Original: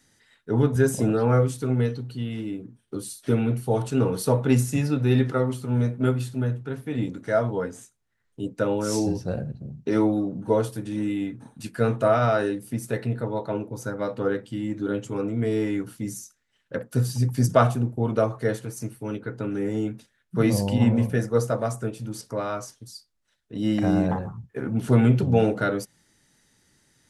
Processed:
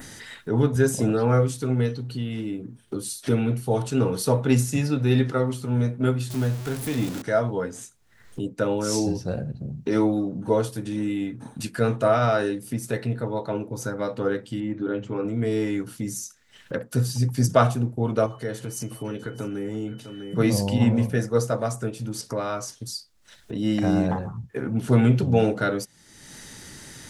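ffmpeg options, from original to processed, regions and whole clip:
-filter_complex "[0:a]asettb=1/sr,asplit=3[a][b][c];[a]atrim=end=6.304[d];[b]atrim=start=6.3:end=7.22,asetpts=PTS-STARTPTS,afade=t=in:d=0.004:c=qsin,afade=t=out:st=0.916:d=0.004:c=qsin,aeval=exprs='val(0)+0.5*0.0211*sgn(val(0))':c=same,highshelf=f=5.9k:g=8.5[e];[c]atrim=start=7.216[f];[d][e]acrossfade=d=0.004:c1=hsin:c2=qsin[g];[g][f]acrossfade=d=0.004:c1=qsin:c2=hsin,asettb=1/sr,asplit=3[h][i][j];[h]atrim=end=14.604[k];[i]atrim=start=14.6:end=15.25,asetpts=PTS-STARTPTS,afade=t=in:d=0.004:c=qsin,afade=t=out:st=0.646:d=0.004:c=qsin,lowpass=2.8k,bandreject=f=50:t=h:w=6,bandreject=f=100:t=h:w=6,bandreject=f=150:t=h:w=6,bandreject=f=200:t=h:w=6[l];[j]atrim=start=15.246[m];[k][l]acrossfade=d=0.004:c1=hsin:c2=qsin[n];[n][m]acrossfade=d=0.004:c1=qsin:c2=hsin,asettb=1/sr,asplit=3[o][p][q];[o]atrim=end=18.264[r];[p]atrim=start=18.26:end=20.38,asetpts=PTS-STARTPTS,afade=t=in:d=0.004:c=qsin,afade=t=out:st=2.116:d=0.004:c=qsin,acompressor=threshold=-37dB:ratio=1.5:attack=3.2:release=140:knee=1:detection=peak,aeval=exprs='val(0)+0.000891*sin(2*PI*3000*n/s)':c=same,aecho=1:1:651:0.168,atrim=end_sample=93492[s];[q]atrim=start=20.376[t];[r][s]acrossfade=d=0.004:c1=hsin:c2=qsin[u];[u][t]acrossfade=d=0.004:c1=qsin:c2=hsin,adynamicequalizer=threshold=0.00631:dfrequency=5200:dqfactor=0.7:tfrequency=5200:tqfactor=0.7:attack=5:release=100:ratio=0.375:range=2:mode=boostabove:tftype=bell,acompressor=mode=upward:threshold=-25dB:ratio=2.5"

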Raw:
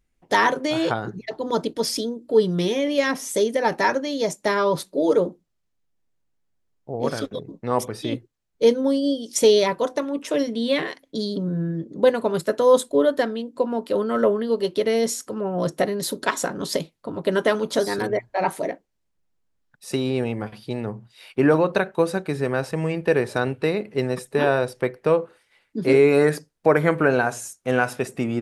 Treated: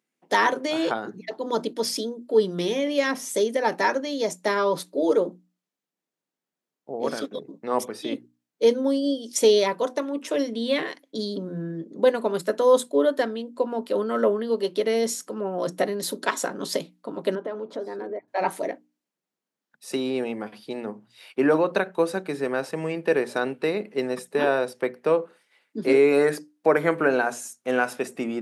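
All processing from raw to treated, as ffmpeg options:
-filter_complex "[0:a]asettb=1/sr,asplit=3[a][b][c];[a]atrim=end=17.354[d];[b]atrim=start=17.35:end=18.28,asetpts=PTS-STARTPTS,afade=t=in:d=0.004:c=qsin,afade=t=out:st=0.926:d=0.004:c=qsin,bandpass=f=460:t=q:w=0.7,acompressor=threshold=-29dB:ratio=2.5:attack=3.2:release=140:knee=1:detection=peak[e];[c]atrim=start=18.276[f];[d][e]acrossfade=d=0.004:c1=hsin:c2=qsin[g];[g][f]acrossfade=d=0.004:c1=qsin:c2=hsin,highpass=f=190:w=0.5412,highpass=f=190:w=1.3066,bandreject=f=60:t=h:w=6,bandreject=f=120:t=h:w=6,bandreject=f=180:t=h:w=6,bandreject=f=240:t=h:w=6,bandreject=f=300:t=h:w=6,volume=-2dB"

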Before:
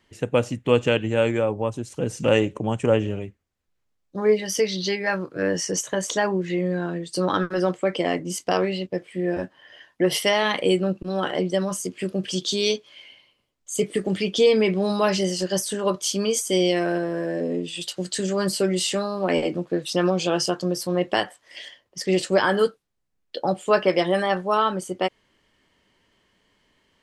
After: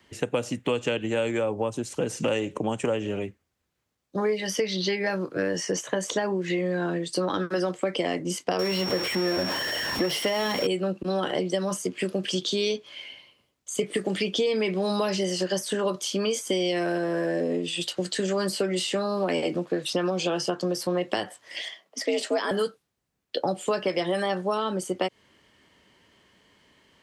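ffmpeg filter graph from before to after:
-filter_complex "[0:a]asettb=1/sr,asplit=3[a][b][c];[a]atrim=end=8.594[d];[b]atrim=start=8.59:end=10.67,asetpts=PTS-STARTPTS,afade=t=in:d=0.004:c=qsin,afade=t=out:st=2.076:d=0.004:c=qsin,aeval=exprs='val(0)+0.5*0.0631*sgn(val(0))':c=same,aeval=exprs='val(0)+0.0447*sin(2*PI*5500*n/s)':c=same[e];[c]atrim=start=10.666[f];[d][e]acrossfade=d=0.004:c1=hsin:c2=qsin[g];[g][f]acrossfade=d=0.004:c1=qsin:c2=hsin,asettb=1/sr,asplit=3[h][i][j];[h]atrim=end=21.614[k];[i]atrim=start=21.61:end=22.51,asetpts=PTS-STARTPTS,afade=t=in:d=0.004:c=qsin,afade=t=out:st=0.896:d=0.004:c=qsin,highpass=73,lowshelf=f=160:g=-7,afreqshift=79[l];[j]atrim=start=22.506[m];[k][l]acrossfade=d=0.004:c1=hsin:c2=qsin[n];[n][m]acrossfade=d=0.004:c1=qsin:c2=hsin,acompressor=threshold=-23dB:ratio=2,highpass=59,acrossover=split=190|610|3500[o][p][q][r];[o]acompressor=threshold=-47dB:ratio=4[s];[p]acompressor=threshold=-32dB:ratio=4[t];[q]acompressor=threshold=-36dB:ratio=4[u];[r]acompressor=threshold=-41dB:ratio=4[v];[s][t][u][v]amix=inputs=4:normalize=0,volume=5dB"

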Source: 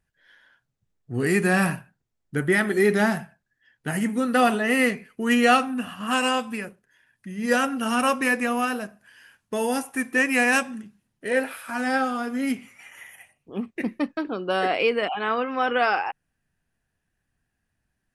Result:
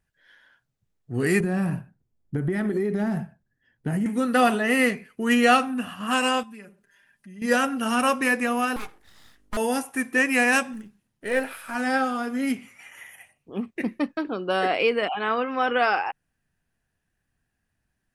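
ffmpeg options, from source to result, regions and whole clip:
-filter_complex "[0:a]asettb=1/sr,asplit=3[a][b][c];[a]atrim=end=1.404[d];[b]atrim=start=1.4:end=4.06,asetpts=PTS-STARTPTS,afade=t=in:d=0.004:c=qsin,afade=t=out:st=2.656:d=0.004:c=qsin,tiltshelf=f=680:g=8,acompressor=threshold=-21dB:ratio=12:attack=3.2:release=140:knee=1:detection=peak[e];[c]atrim=start=4.056[f];[d][e]acrossfade=d=0.004:c1=hsin:c2=qsin[g];[g][f]acrossfade=d=0.004:c1=qsin:c2=hsin,asettb=1/sr,asplit=3[h][i][j];[h]atrim=end=6.434[k];[i]atrim=start=6.43:end=7.42,asetpts=PTS-STARTPTS,afade=t=in:d=0.004:c=qsin,afade=t=out:st=0.986:d=0.004:c=qsin,acompressor=threshold=-58dB:ratio=2:attack=3.2:release=140:knee=1:detection=peak,aecho=1:1:5:0.96,atrim=end_sample=43659[l];[j]atrim=start=7.416[m];[k][l]acrossfade=d=0.004:c1=hsin:c2=qsin[n];[n][m]acrossfade=d=0.004:c1=qsin:c2=hsin,asettb=1/sr,asplit=3[o][p][q];[o]atrim=end=8.764[r];[p]atrim=start=8.76:end=9.57,asetpts=PTS-STARTPTS,afade=t=in:d=0.004:c=qsin,afade=t=out:st=0.806:d=0.004:c=qsin,afreqshift=190,aeval=exprs='val(0)+0.00112*(sin(2*PI*50*n/s)+sin(2*PI*2*50*n/s)/2+sin(2*PI*3*50*n/s)/3+sin(2*PI*4*50*n/s)/4+sin(2*PI*5*50*n/s)/5)':c=same,aeval=exprs='abs(val(0))':c=same[s];[q]atrim=start=9.566[t];[r][s]acrossfade=d=0.004:c1=hsin:c2=qsin[u];[u][t]acrossfade=d=0.004:c1=qsin:c2=hsin,asettb=1/sr,asplit=3[v][w][x];[v]atrim=end=10.734[y];[w]atrim=start=10.73:end=11.75,asetpts=PTS-STARTPTS,afade=t=in:d=0.004:c=qsin,afade=t=out:st=1.016:d=0.004:c=qsin,aeval=exprs='if(lt(val(0),0),0.708*val(0),val(0))':c=same,acrusher=bits=9:mode=log:mix=0:aa=0.000001[z];[x]atrim=start=11.746[aa];[y][z]acrossfade=d=0.004:c1=hsin:c2=qsin[ab];[ab][aa]acrossfade=d=0.004:c1=qsin:c2=hsin"

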